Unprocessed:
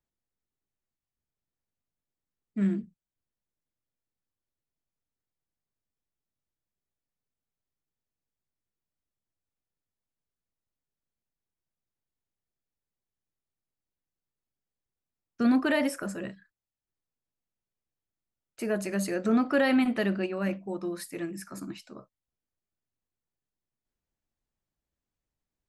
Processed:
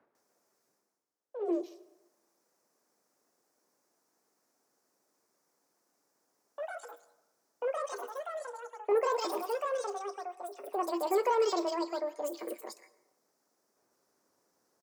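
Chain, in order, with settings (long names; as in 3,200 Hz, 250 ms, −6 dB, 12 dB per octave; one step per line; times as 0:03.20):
high-pass filter 110 Hz 12 dB per octave
in parallel at +3 dB: downward compressor, threshold −38 dBFS, peak gain reduction 17 dB
on the sum: high shelf with overshoot 2,400 Hz +10.5 dB, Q 3
multiband delay without the direct sound lows, highs 260 ms, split 1,500 Hz
wrong playback speed 45 rpm record played at 78 rpm
reversed playback
upward compression, threshold −45 dBFS
reversed playback
delay with pitch and tempo change per echo 149 ms, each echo +3 semitones, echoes 2, each echo −6 dB
three-way crossover with the lows and the highs turned down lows −14 dB, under 270 Hz, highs −17 dB, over 2,900 Hz
dense smooth reverb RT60 1 s, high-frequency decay 0.6×, pre-delay 95 ms, DRR 18 dB
level −4 dB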